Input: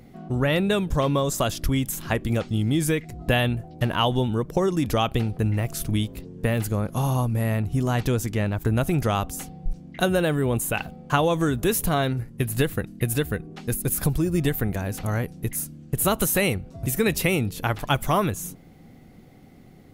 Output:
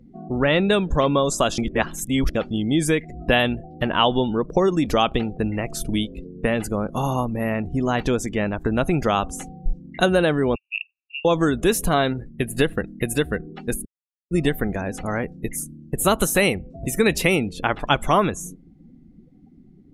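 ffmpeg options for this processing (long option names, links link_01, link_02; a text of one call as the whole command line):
ffmpeg -i in.wav -filter_complex "[0:a]asettb=1/sr,asplit=3[link_01][link_02][link_03];[link_01]atrim=end=10.554[link_04];[link_02]atrim=start=10.55:end=11.25,asetpts=PTS-STARTPTS,afade=type=in:duration=0.004:curve=qsin,afade=type=out:start_time=0.696:duration=0.004:curve=qsin,asuperpass=centerf=2600:order=12:qfactor=5[link_05];[link_03]atrim=start=11.246[link_06];[link_04][link_05]acrossfade=duration=0.004:curve1=hsin:curve2=qsin[link_07];[link_07][link_06]acrossfade=duration=0.004:curve1=qsin:curve2=hsin,asplit=5[link_08][link_09][link_10][link_11][link_12];[link_08]atrim=end=1.582[link_13];[link_09]atrim=start=1.578:end=2.352,asetpts=PTS-STARTPTS,areverse[link_14];[link_10]atrim=start=2.348:end=13.85,asetpts=PTS-STARTPTS,afade=type=out:start_time=11.498:duration=0.004:curve=hsin[link_15];[link_11]atrim=start=13.85:end=14.31,asetpts=PTS-STARTPTS,volume=0[link_16];[link_12]atrim=start=14.31,asetpts=PTS-STARTPTS,afade=type=in:duration=0.004:curve=hsin[link_17];[link_13][link_14]acrossfade=duration=0.004:curve1=hsin:curve2=hsin[link_18];[link_15][link_16][link_17]concat=n=3:v=0:a=1[link_19];[link_18][link_19]acrossfade=duration=0.004:curve1=hsin:curve2=hsin,lowpass=9700,afftdn=noise_reduction=24:noise_floor=-42,equalizer=frequency=110:width=1.9:gain=-12,volume=4.5dB" out.wav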